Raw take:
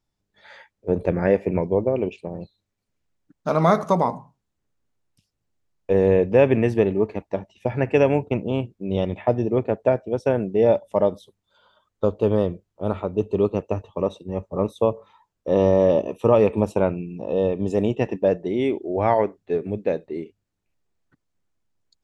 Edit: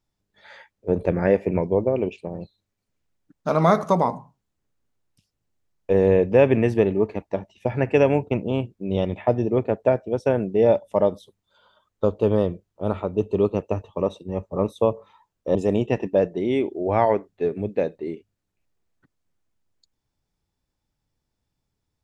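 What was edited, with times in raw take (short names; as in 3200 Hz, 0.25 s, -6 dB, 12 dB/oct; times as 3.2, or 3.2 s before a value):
15.55–17.64 cut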